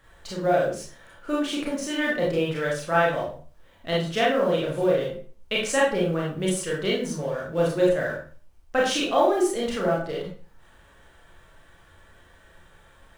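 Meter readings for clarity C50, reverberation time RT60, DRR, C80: 3.0 dB, 0.40 s, −5.0 dB, 8.5 dB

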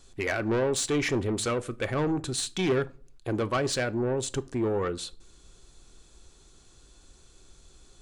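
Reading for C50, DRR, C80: 22.5 dB, 12.0 dB, 27.0 dB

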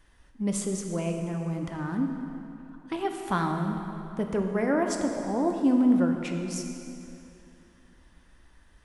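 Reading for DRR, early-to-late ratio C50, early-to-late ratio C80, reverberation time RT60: 3.0 dB, 4.5 dB, 5.0 dB, 2.9 s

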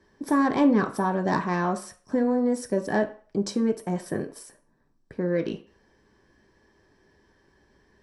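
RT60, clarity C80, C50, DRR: 0.45 s, 18.0 dB, 14.5 dB, 3.5 dB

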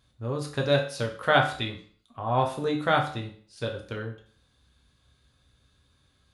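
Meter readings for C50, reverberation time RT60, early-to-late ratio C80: 9.5 dB, 0.50 s, 13.5 dB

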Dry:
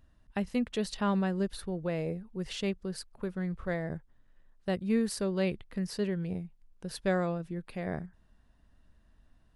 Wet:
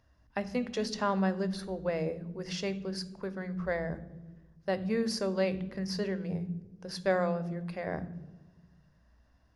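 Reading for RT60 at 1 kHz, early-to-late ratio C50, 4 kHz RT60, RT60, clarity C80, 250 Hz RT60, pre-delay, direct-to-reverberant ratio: 1.0 s, 16.0 dB, 0.80 s, 1.2 s, 18.5 dB, 1.6 s, 3 ms, 12.0 dB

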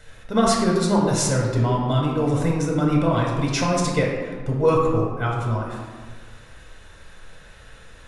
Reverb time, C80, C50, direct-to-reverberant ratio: 1.6 s, 3.5 dB, 1.5 dB, −2.5 dB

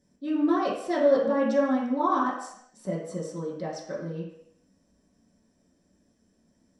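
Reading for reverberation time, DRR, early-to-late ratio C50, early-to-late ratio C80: 0.70 s, −8.5 dB, 4.0 dB, 6.5 dB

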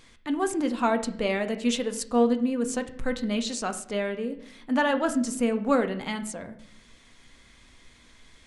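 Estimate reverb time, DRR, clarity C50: 0.65 s, 6.5 dB, 13.0 dB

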